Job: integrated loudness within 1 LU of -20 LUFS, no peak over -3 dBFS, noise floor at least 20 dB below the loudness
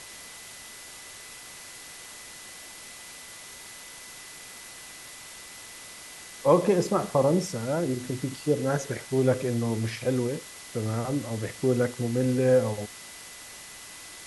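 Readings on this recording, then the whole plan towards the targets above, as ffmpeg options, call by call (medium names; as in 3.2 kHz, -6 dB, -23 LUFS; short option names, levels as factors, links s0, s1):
steady tone 2 kHz; tone level -51 dBFS; noise floor -45 dBFS; noise floor target -47 dBFS; loudness -26.5 LUFS; peak level -7.0 dBFS; loudness target -20.0 LUFS
-> -af "bandreject=f=2000:w=30"
-af "afftdn=nr=6:nf=-45"
-af "volume=2.11,alimiter=limit=0.708:level=0:latency=1"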